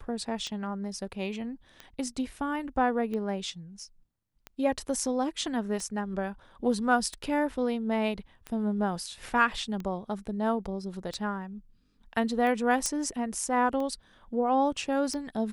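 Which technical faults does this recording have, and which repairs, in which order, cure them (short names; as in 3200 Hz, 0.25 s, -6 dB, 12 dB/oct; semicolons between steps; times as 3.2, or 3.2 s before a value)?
tick 45 rpm -24 dBFS
12.86 pop -14 dBFS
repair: de-click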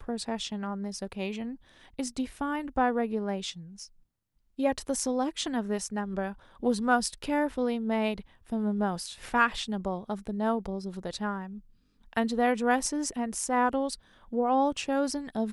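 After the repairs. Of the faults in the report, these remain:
none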